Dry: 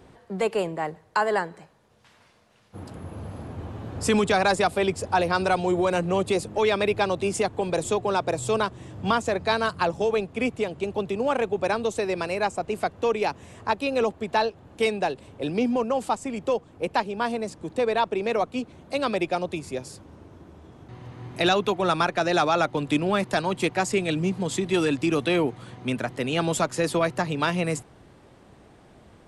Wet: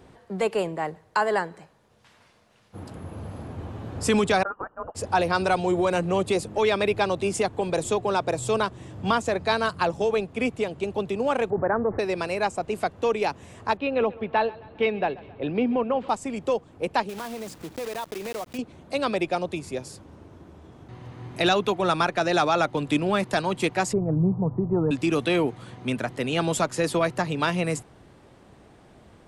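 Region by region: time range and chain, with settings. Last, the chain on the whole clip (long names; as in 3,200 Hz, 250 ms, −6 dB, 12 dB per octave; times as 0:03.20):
0:04.43–0:04.95: elliptic high-pass filter 1,700 Hz, stop band 50 dB + voice inversion scrambler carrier 3,000 Hz
0:11.50–0:11.99: Butterworth low-pass 1,900 Hz 72 dB per octave + envelope flattener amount 50%
0:13.77–0:16.09: low-pass filter 3,200 Hz 24 dB per octave + repeating echo 134 ms, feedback 52%, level −21 dB
0:17.09–0:18.59: one scale factor per block 3 bits + downward compressor 3 to 1, threshold −32 dBFS
0:23.93–0:24.91: Butterworth low-pass 1,100 Hz + low shelf with overshoot 190 Hz +6.5 dB, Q 1.5
whole clip: no processing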